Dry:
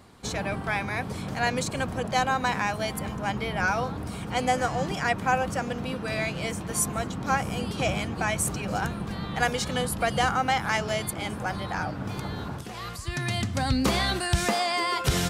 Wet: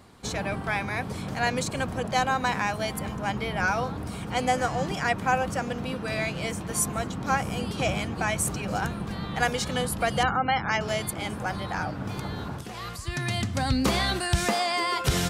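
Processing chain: 10.23–10.81 spectral gate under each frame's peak -25 dB strong

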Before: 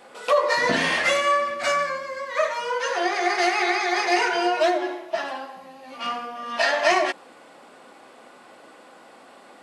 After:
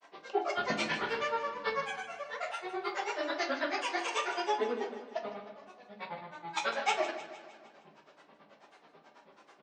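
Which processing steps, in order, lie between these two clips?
steep low-pass 6600 Hz 72 dB/oct; notches 60/120/180/240/300/360 Hz; grains, grains 9.2/s, spray 28 ms, pitch spread up and down by 7 st; on a send: feedback echo 0.154 s, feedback 54%, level -12.5 dB; on the sum: shoebox room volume 260 m³, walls furnished, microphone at 1.2 m; gain -8.5 dB

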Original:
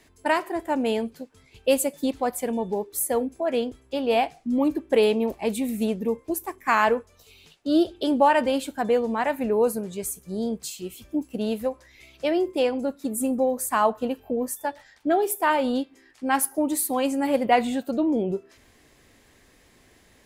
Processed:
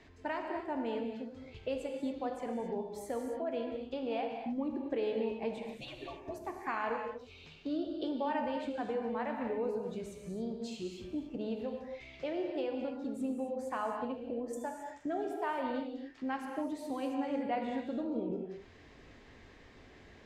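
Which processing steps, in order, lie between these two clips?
5.58–6.42 median-filter separation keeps percussive; air absorption 170 m; compressor 2.5:1, threshold -42 dBFS, peak gain reduction 18 dB; 14.53–15.07 resonant high shelf 5700 Hz +10.5 dB, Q 3; non-linear reverb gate 0.3 s flat, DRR 2 dB

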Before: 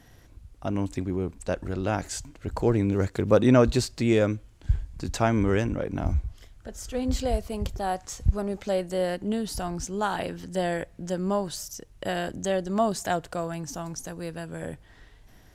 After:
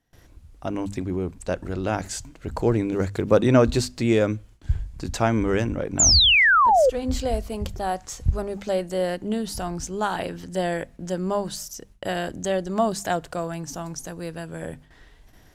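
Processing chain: painted sound fall, 5.99–6.9, 480–7500 Hz -18 dBFS; gate with hold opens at -43 dBFS; notches 50/100/150/200/250 Hz; gain +2 dB

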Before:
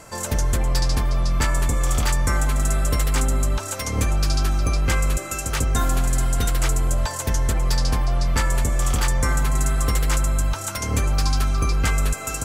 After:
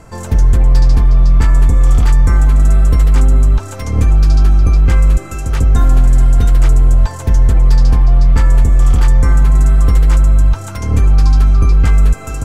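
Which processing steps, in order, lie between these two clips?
tilt -2.5 dB/oct; notch 580 Hz, Q 12; gain +1.5 dB

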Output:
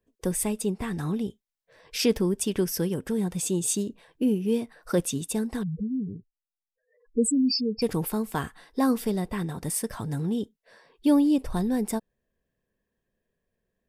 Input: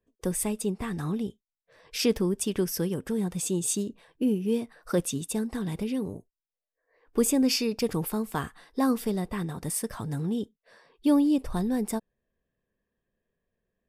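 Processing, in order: 5.63–7.82 spectral contrast raised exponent 4; notch 1200 Hz, Q 15; gain +1.5 dB

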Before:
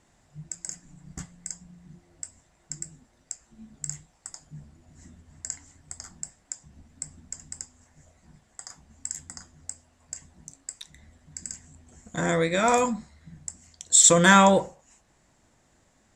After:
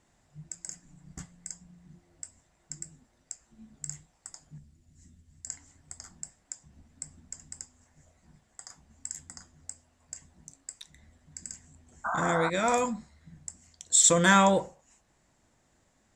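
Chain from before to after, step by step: 4.58–5.47 bell 850 Hz -13.5 dB 2.9 oct; 12.04–12.5 painted sound noise 630–1600 Hz -26 dBFS; gain -4.5 dB

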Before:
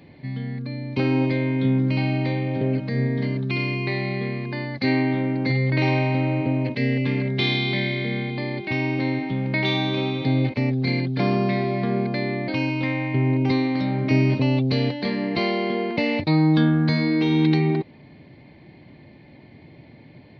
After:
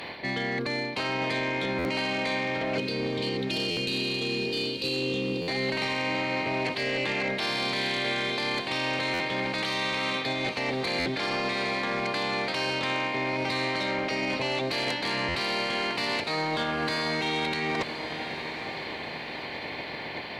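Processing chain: spectral limiter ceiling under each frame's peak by 23 dB; HPF 190 Hz 6 dB/oct; spectral gain 2.78–5.45, 550–2400 Hz -29 dB; limiter -13.5 dBFS, peak gain reduction 8 dB; reverse; compressor 10:1, threshold -36 dBFS, peak gain reduction 17 dB; reverse; sine folder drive 7 dB, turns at -23.5 dBFS; on a send: diffused feedback echo 0.923 s, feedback 48%, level -10 dB; on the sum: stuck buffer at 1.78/3.7/5.41/9.13/10.99/15.28, samples 512, times 5

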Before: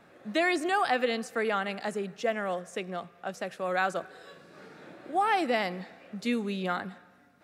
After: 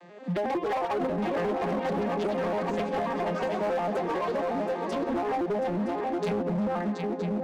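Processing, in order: arpeggiated vocoder minor triad, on F3, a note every 90 ms; high shelf 2700 Hz +5.5 dB; treble ducked by the level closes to 550 Hz, closed at -25 dBFS; in parallel at -7.5 dB: wavefolder -29.5 dBFS; on the sum: echoes that change speed 0.228 s, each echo +5 st, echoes 2, each echo -6 dB; HPF 190 Hz 24 dB/oct; bell 240 Hz -5 dB 0.6 oct; notch 1400 Hz, Q 7.9; swung echo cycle 0.966 s, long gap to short 3:1, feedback 37%, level -7.5 dB; compressor 6:1, threshold -31 dBFS, peak gain reduction 7.5 dB; hard clip -32.5 dBFS, distortion -13 dB; gain +8 dB

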